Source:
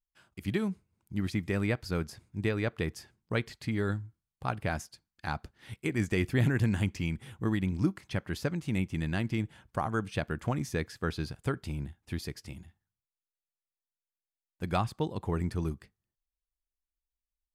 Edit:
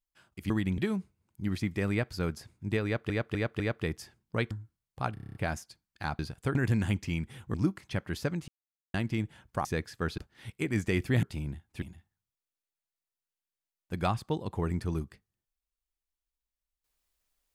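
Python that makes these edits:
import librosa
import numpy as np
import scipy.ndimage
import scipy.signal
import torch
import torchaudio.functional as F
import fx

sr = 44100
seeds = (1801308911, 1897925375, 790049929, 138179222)

y = fx.edit(x, sr, fx.repeat(start_s=2.57, length_s=0.25, count=4),
    fx.cut(start_s=3.48, length_s=0.47),
    fx.stutter(start_s=4.58, slice_s=0.03, count=8),
    fx.swap(start_s=5.42, length_s=1.05, other_s=11.2, other_length_s=0.36),
    fx.move(start_s=7.46, length_s=0.28, to_s=0.5),
    fx.silence(start_s=8.68, length_s=0.46),
    fx.cut(start_s=9.85, length_s=0.82),
    fx.cut(start_s=12.15, length_s=0.37), tone=tone)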